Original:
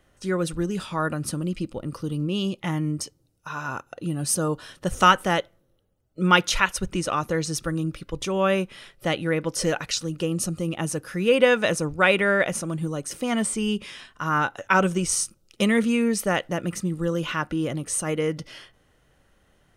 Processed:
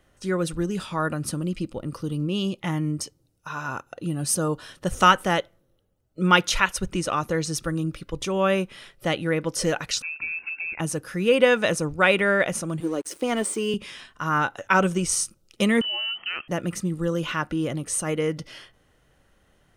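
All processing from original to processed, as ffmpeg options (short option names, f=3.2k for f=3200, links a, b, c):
-filter_complex "[0:a]asettb=1/sr,asplit=3[a][b][c];[a]atrim=end=10.024[d];[b]atrim=start=10.02:end=10.8,asetpts=PTS-STARTPTS,afade=t=in:d=0.004:c=qsin,afade=t=out:st=0.776:d=0.004:c=qsin,acompressor=threshold=-30dB:ratio=2:attack=3.2:release=140:knee=1:detection=peak,acrusher=bits=5:mode=log:mix=0:aa=0.000001,lowpass=f=2.4k:t=q:w=0.5098,lowpass=f=2.4k:t=q:w=0.6013,lowpass=f=2.4k:t=q:w=0.9,lowpass=f=2.4k:t=q:w=2.563,afreqshift=-2800[e];[c]atrim=start=10.796[f];[d][e]acrossfade=d=0.004:c1=hsin:c2=qsin[g];[g][f]acrossfade=d=0.004:c1=qsin:c2=hsin,asettb=1/sr,asplit=3[h][i][j];[h]atrim=end=12.804[k];[i]atrim=start=12.8:end=13.74,asetpts=PTS-STARTPTS,afade=t=in:d=0.004:c=qsin,afade=t=out:st=0.936:d=0.004:c=qsin,highpass=f=340:t=q:w=2.4,aeval=exprs='sgn(val(0))*max(abs(val(0))-0.00596,0)':c=same[l];[j]atrim=start=13.736[m];[k][l]acrossfade=d=0.004:c1=hsin:c2=qsin[n];[n][m]acrossfade=d=0.004:c1=qsin:c2=hsin,asettb=1/sr,asplit=3[o][p][q];[o]atrim=end=15.814[r];[p]atrim=start=15.81:end=16.48,asetpts=PTS-STARTPTS,afade=t=in:d=0.004:c=qsin,afade=t=out:st=0.666:d=0.004:c=qsin,lowpass=f=2.7k:t=q:w=0.5098,lowpass=f=2.7k:t=q:w=0.6013,lowpass=f=2.7k:t=q:w=0.9,lowpass=f=2.7k:t=q:w=2.563,afreqshift=-3200,acompressor=threshold=-29dB:ratio=2.5:attack=3.2:release=140:knee=1:detection=peak[s];[q]atrim=start=16.476[t];[r][s]acrossfade=d=0.004:c1=hsin:c2=qsin[u];[u][t]acrossfade=d=0.004:c1=qsin:c2=hsin"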